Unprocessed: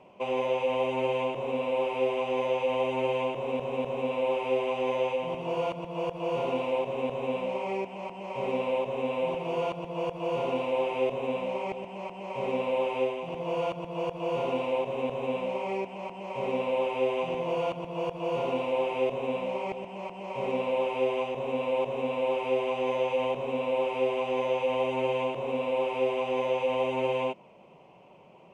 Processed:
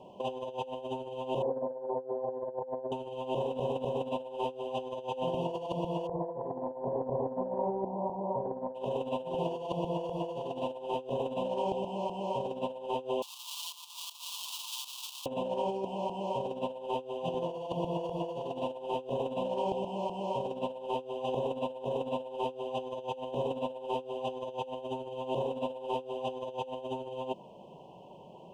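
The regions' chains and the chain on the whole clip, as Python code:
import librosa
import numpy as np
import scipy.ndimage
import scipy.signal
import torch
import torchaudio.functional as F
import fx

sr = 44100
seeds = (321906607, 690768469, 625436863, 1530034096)

y = fx.chain(x, sr, fx.cheby_ripple(hz=1900.0, ripple_db=6),
    fx.hum_notches(base_hz=50, count=9), at=(1.42, 2.92))
y = fx.chain(y, sr, fx.brickwall_lowpass(high_hz=1200.0),
    fx.room_flutter(wall_m=10.8, rt60_s=0.3), at=(6.07, 8.75))
y = fx.chain(y, sr, fx.halfwave_hold(),
    fx.steep_highpass(hz=1200.0, slope=48),
    fx.high_shelf(hz=2300.0, db=-10.5), at=(13.22, 15.26))
y = scipy.signal.sosfilt(scipy.signal.ellip(3, 1.0, 40, [960.0, 3000.0], 'bandstop', fs=sr, output='sos'), y)
y = fx.over_compress(y, sr, threshold_db=-34.0, ratio=-0.5)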